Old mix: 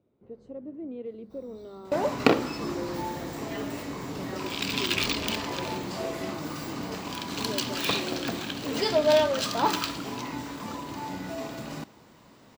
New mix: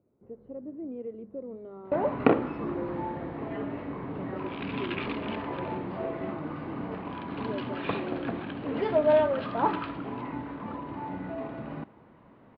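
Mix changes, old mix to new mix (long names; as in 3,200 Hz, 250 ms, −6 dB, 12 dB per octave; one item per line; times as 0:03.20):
first sound −9.5 dB
master: add Gaussian smoothing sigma 3.9 samples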